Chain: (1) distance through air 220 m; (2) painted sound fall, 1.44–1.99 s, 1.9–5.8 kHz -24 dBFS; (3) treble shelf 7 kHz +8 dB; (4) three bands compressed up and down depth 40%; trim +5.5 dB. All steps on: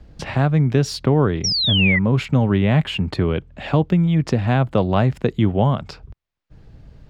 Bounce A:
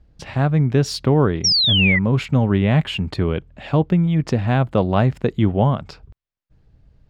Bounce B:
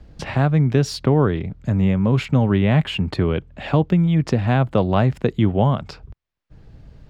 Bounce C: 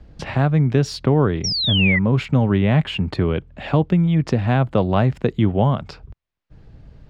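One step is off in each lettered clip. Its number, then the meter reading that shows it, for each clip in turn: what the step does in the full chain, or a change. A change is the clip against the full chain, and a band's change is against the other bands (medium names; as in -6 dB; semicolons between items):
4, crest factor change +1.5 dB; 2, 4 kHz band -10.0 dB; 3, 4 kHz band -1.5 dB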